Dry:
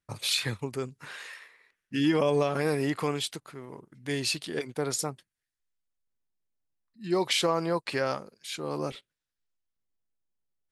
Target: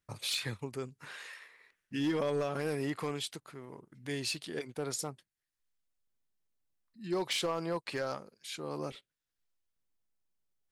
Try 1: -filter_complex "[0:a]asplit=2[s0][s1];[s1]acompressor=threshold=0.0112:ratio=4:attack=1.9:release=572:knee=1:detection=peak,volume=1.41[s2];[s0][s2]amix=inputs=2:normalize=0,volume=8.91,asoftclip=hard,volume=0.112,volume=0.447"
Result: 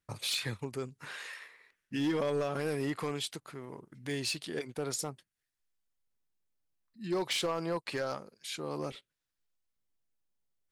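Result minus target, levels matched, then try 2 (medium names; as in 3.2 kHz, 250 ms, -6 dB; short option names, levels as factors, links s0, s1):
compression: peak gain reduction -8 dB
-filter_complex "[0:a]asplit=2[s0][s1];[s1]acompressor=threshold=0.00316:ratio=4:attack=1.9:release=572:knee=1:detection=peak,volume=1.41[s2];[s0][s2]amix=inputs=2:normalize=0,volume=8.91,asoftclip=hard,volume=0.112,volume=0.447"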